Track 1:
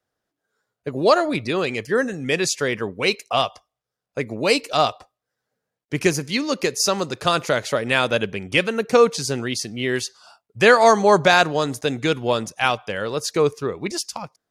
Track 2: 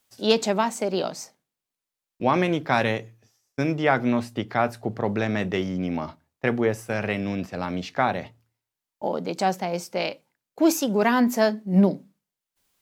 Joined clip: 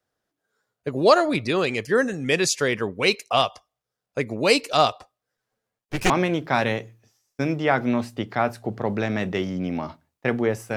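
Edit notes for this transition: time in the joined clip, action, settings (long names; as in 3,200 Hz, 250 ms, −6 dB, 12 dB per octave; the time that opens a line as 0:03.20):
track 1
0:05.37–0:06.10: lower of the sound and its delayed copy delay 9.2 ms
0:06.10: continue with track 2 from 0:02.29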